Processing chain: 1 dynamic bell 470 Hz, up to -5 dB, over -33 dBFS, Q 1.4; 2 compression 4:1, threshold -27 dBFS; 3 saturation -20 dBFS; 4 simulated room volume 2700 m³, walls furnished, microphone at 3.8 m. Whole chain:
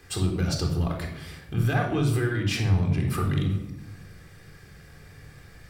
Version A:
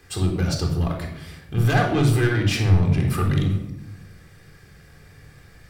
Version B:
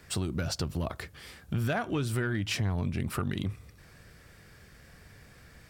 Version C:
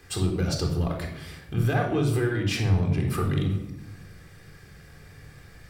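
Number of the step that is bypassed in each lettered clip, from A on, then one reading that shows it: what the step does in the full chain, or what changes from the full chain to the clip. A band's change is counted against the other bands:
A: 2, 8 kHz band -2.0 dB; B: 4, echo-to-direct -3.0 dB to none; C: 1, 500 Hz band +3.0 dB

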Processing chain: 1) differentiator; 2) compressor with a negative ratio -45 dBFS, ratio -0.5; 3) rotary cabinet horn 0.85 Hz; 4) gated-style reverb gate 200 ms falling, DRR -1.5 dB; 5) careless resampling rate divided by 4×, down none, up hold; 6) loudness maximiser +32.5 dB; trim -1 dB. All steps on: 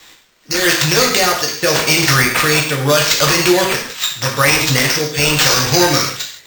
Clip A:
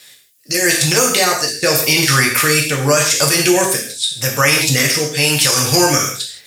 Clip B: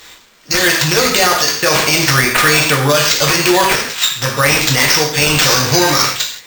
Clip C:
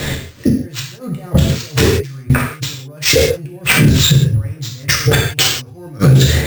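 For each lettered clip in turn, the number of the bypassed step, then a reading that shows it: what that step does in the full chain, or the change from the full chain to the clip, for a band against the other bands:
5, 8 kHz band +3.0 dB; 3, momentary loudness spread change -2 LU; 1, 125 Hz band +12.0 dB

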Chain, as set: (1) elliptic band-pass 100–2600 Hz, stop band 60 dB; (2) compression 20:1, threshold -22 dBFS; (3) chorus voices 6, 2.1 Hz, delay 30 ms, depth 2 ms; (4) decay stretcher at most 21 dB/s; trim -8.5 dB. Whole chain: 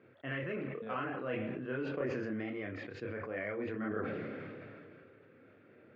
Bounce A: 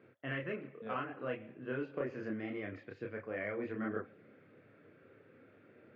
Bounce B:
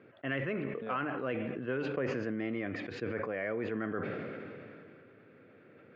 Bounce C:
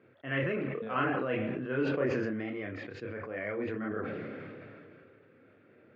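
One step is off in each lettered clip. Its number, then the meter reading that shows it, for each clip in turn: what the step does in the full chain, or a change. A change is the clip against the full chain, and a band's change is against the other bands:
4, crest factor change +2.0 dB; 3, loudness change +3.0 LU; 2, mean gain reduction 1.5 dB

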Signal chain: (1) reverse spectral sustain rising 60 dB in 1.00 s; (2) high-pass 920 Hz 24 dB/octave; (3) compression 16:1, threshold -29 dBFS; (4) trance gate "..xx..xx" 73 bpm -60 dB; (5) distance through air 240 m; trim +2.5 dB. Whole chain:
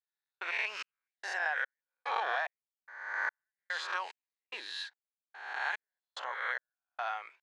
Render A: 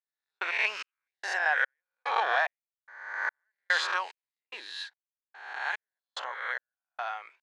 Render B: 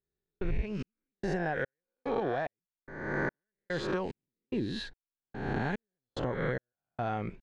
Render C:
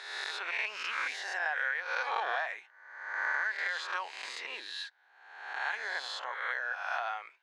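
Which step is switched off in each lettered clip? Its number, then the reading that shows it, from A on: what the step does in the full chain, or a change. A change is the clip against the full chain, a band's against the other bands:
3, mean gain reduction 3.5 dB; 2, 500 Hz band +16.0 dB; 4, 8 kHz band +2.5 dB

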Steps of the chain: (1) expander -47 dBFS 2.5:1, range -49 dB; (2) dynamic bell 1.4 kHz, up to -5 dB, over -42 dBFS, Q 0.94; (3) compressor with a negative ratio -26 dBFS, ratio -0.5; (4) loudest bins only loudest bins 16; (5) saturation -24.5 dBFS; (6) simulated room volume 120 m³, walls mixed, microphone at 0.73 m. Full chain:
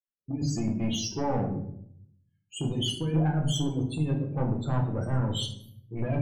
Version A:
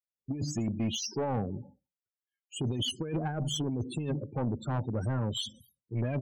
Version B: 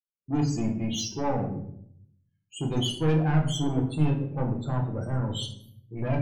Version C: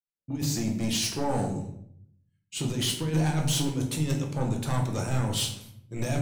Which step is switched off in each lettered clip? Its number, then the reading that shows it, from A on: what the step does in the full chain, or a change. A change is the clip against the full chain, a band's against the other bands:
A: 6, momentary loudness spread change -3 LU; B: 3, momentary loudness spread change +2 LU; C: 4, 8 kHz band +6.5 dB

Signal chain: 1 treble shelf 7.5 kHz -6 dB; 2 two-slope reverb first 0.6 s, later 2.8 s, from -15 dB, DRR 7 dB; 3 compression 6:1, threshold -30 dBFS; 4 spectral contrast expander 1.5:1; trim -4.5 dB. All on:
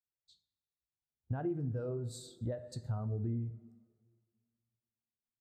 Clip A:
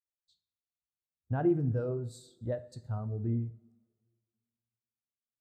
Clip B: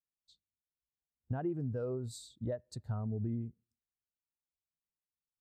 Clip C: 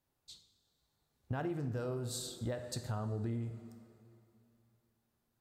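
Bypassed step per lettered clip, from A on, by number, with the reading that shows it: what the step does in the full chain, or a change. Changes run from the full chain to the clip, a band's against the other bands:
3, mean gain reduction 3.5 dB; 2, 125 Hz band -2.0 dB; 4, 125 Hz band -7.5 dB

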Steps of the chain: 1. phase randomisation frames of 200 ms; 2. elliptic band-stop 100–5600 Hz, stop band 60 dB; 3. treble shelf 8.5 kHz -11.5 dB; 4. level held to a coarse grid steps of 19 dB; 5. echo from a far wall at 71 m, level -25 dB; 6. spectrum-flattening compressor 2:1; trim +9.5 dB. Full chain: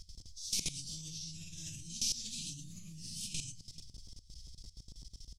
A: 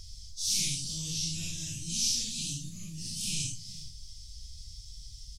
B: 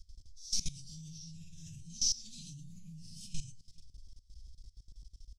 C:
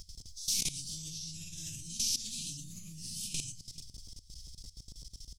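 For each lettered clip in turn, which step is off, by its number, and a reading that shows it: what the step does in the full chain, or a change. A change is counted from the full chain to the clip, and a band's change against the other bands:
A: 4, crest factor change -5.5 dB; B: 6, 2 kHz band -10.5 dB; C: 3, 8 kHz band +2.5 dB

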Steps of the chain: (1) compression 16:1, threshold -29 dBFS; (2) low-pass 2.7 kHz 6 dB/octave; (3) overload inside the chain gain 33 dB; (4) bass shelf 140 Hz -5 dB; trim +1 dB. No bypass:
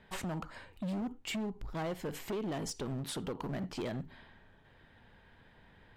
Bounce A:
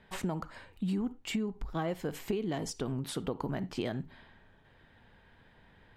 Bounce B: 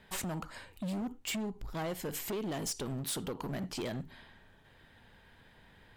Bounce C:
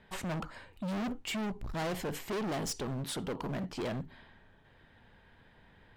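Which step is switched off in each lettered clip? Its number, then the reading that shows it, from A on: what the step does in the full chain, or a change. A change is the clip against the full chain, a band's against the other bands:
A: 3, distortion -9 dB; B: 2, momentary loudness spread change +1 LU; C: 1, mean gain reduction 5.5 dB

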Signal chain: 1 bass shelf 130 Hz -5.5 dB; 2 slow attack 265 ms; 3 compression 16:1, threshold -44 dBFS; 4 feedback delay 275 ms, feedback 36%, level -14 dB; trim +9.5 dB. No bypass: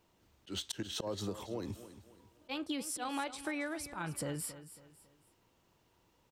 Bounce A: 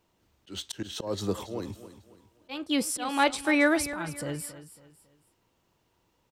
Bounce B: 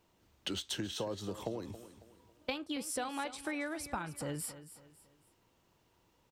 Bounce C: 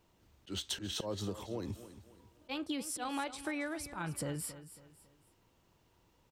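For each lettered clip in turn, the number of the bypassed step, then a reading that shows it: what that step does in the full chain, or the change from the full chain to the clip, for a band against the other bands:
3, mean gain reduction 6.5 dB; 2, 125 Hz band -1.5 dB; 1, 125 Hz band +2.0 dB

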